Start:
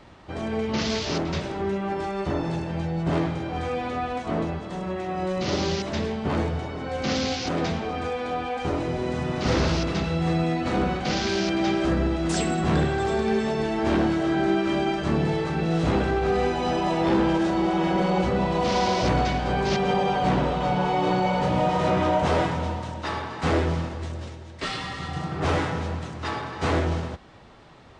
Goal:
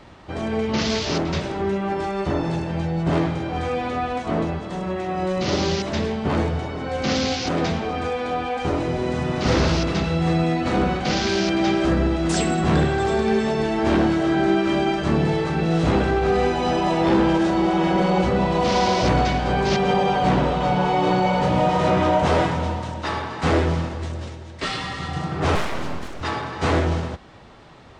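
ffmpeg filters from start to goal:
-filter_complex "[0:a]asettb=1/sr,asplit=3[s0][s1][s2];[s0]atrim=end=25.554[s3];[s1]atrim=start=25.55:end=26.21,asetpts=PTS-STARTPTS,afade=t=in:d=0.004:c=qsin,afade=t=out:st=0.656:d=0.004:c=qsin,aeval=exprs='abs(val(0))':c=same[s4];[s2]atrim=start=26.206[s5];[s3][s4]acrossfade=d=0.004:c1=hsin:c2=qsin[s6];[s6][s5]acrossfade=d=0.004:c1=qsin:c2=hsin,volume=1.5"

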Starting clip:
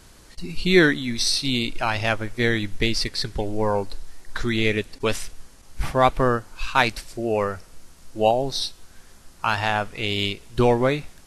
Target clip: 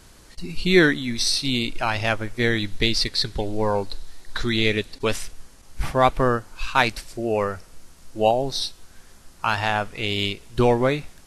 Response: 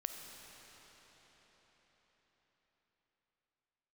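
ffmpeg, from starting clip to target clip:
-filter_complex "[0:a]asettb=1/sr,asplit=3[s0][s1][s2];[s0]atrim=end=2.584[s3];[s1]atrim=start=2.58:end=5.05,asetpts=PTS-STARTPTS,afade=t=in:d=0.004:c=qsin,afade=t=out:st=2.466:d=0.004:c=qsin,equalizer=f=3900:t=o:w=0.44:g=7[s4];[s2]atrim=start=5.046[s5];[s3][s4]acrossfade=d=0.004:c1=hsin:c2=qsin[s6];[s6][s5]acrossfade=d=0.004:c1=qsin:c2=hsin"

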